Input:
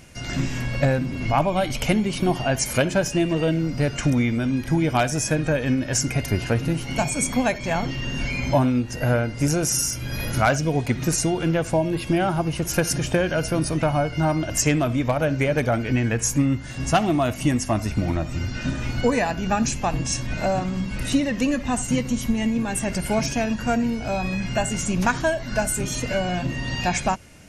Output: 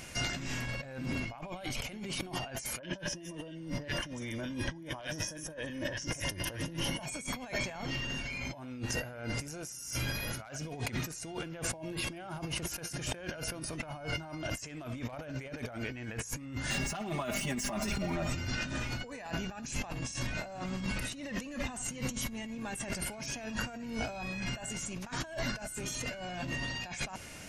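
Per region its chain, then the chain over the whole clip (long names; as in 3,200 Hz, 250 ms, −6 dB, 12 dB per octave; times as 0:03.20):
0:02.79–0:07.06: EQ curve with evenly spaced ripples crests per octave 1.2, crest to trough 9 dB + three-band delay without the direct sound lows, mids, highs 40/190 ms, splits 1,600/6,000 Hz
0:16.70–0:18.27: running median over 3 samples + downward compressor, threshold −27 dBFS + comb filter 5 ms, depth 97%
whole clip: low-shelf EQ 430 Hz −7.5 dB; compressor whose output falls as the input rises −36 dBFS, ratio −1; level −3.5 dB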